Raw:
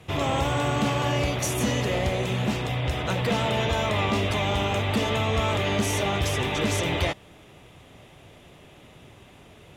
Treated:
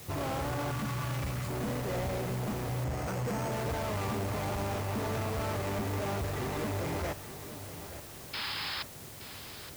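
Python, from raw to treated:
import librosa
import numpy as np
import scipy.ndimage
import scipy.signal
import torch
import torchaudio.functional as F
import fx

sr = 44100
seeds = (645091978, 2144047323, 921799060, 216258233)

y = scipy.ndimage.median_filter(x, 15, mode='constant')
y = fx.band_shelf(y, sr, hz=500.0, db=-12.5, octaves=1.7, at=(0.71, 1.49))
y = 10.0 ** (-29.5 / 20.0) * np.tanh(y / 10.0 ** (-29.5 / 20.0))
y = fx.quant_dither(y, sr, seeds[0], bits=8, dither='triangular')
y = fx.resample_bad(y, sr, factor=6, down='filtered', up='hold', at=(2.84, 3.52))
y = fx.spec_paint(y, sr, seeds[1], shape='noise', start_s=8.33, length_s=0.5, low_hz=770.0, high_hz=5300.0, level_db=-35.0)
y = fx.echo_feedback(y, sr, ms=872, feedback_pct=51, wet_db=-13.0)
y = F.gain(torch.from_numpy(y), -1.5).numpy()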